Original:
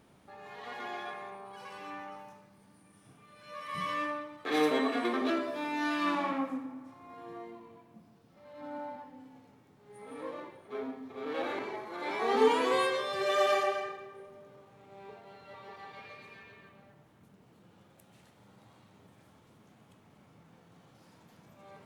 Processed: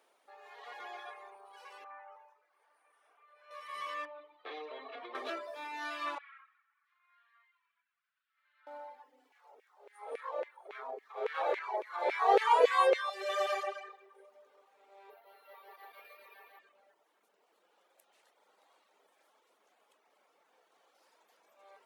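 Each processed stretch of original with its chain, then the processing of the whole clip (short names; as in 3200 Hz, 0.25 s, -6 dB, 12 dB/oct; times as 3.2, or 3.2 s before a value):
1.84–3.51 three-band isolator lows -23 dB, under 410 Hz, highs -17 dB, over 2200 Hz + mismatched tape noise reduction encoder only
4.05–5.15 LPF 3900 Hz 24 dB/oct + bell 1600 Hz -6 dB 0.66 oct + compressor 5:1, threshold -33 dBFS
6.18–8.67 Chebyshev high-pass 1400 Hz, order 4 + air absorption 380 m + feedback echo 0.178 s, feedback 37%, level -19.5 dB
9.32–13.1 bell 340 Hz +12.5 dB 2.4 oct + LFO high-pass saw down 3.6 Hz 460–2300 Hz
15.1–16.59 high shelf 5900 Hz -5.5 dB + echo 0.715 s -6.5 dB + careless resampling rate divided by 3×, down filtered, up hold
whole clip: reverb removal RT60 0.69 s; HPF 450 Hz 24 dB/oct; gain -4 dB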